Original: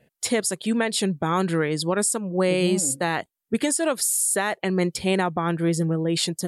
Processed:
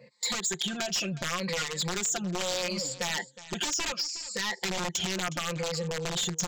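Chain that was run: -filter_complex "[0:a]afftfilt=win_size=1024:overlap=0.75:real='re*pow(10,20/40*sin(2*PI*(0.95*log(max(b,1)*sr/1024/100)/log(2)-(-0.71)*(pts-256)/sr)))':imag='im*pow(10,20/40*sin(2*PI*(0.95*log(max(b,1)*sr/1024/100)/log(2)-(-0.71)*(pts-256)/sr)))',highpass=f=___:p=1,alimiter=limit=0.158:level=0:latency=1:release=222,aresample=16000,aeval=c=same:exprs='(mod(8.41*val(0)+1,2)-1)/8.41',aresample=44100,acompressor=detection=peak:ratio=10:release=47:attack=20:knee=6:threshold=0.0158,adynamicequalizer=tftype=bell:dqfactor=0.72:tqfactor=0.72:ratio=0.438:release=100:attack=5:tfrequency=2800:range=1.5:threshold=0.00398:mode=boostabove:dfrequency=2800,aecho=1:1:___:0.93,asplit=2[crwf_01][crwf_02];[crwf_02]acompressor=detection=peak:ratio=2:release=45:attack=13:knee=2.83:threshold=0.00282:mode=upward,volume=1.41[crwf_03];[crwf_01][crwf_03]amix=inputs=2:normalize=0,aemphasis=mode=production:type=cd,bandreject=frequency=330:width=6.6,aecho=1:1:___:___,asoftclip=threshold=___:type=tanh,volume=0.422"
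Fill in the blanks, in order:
170, 5.7, 364, 0.126, 0.188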